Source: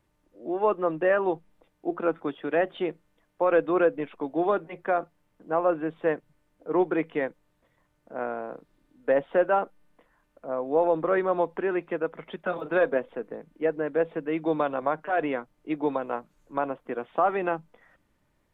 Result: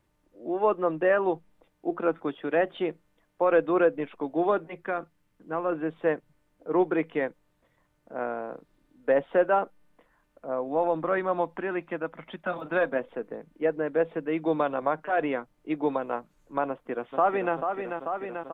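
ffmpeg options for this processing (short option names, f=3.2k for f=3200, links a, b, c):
-filter_complex "[0:a]asettb=1/sr,asplit=3[a][b][c];[a]atrim=end=4.754[d];[b]atrim=start=4.75:end=5.72,asetpts=PTS-STARTPTS,afade=t=in:d=0.004:c=qsin,afade=t=out:st=0.966:d=0.004:c=qsin,equalizer=f=670:t=o:w=1.2:g=-7.5[e];[c]atrim=start=5.716[f];[d][e]acrossfade=d=0.004:c1=hsin:c2=qsin[g];[g][f]acrossfade=d=0.004:c1=qsin:c2=hsin,asettb=1/sr,asplit=3[h][i][j];[h]atrim=end=10.684[k];[i]atrim=start=10.68:end=12.99,asetpts=PTS-STARTPTS,afade=t=in:d=0.004:c=qsin,afade=t=out:st=2.306:d=0.004:c=qsin,equalizer=f=430:w=4.3:g=-11[l];[j]atrim=start=12.986[m];[k][l]acrossfade=d=0.004:c1=hsin:c2=qsin[n];[n][m]acrossfade=d=0.004:c1=qsin:c2=hsin,asplit=2[o][p];[p]afade=t=in:st=16.68:d=0.01,afade=t=out:st=17.55:d=0.01,aecho=0:1:440|880|1320|1760|2200|2640|3080|3520|3960|4400|4840|5280:0.473151|0.378521|0.302817|0.242253|0.193803|0.155042|0.124034|0.099227|0.0793816|0.0635053|0.0508042|0.0406434[q];[o][q]amix=inputs=2:normalize=0"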